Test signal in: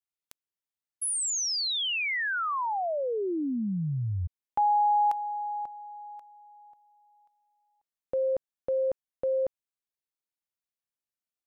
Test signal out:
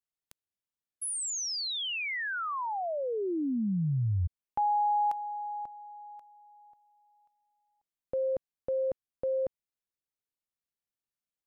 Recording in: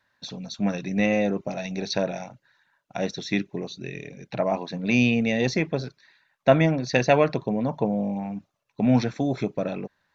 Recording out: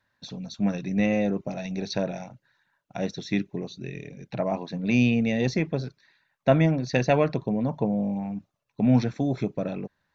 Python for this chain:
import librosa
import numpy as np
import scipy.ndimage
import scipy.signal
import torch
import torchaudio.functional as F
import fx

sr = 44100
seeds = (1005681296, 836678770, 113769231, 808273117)

y = fx.low_shelf(x, sr, hz=300.0, db=7.0)
y = F.gain(torch.from_numpy(y), -4.5).numpy()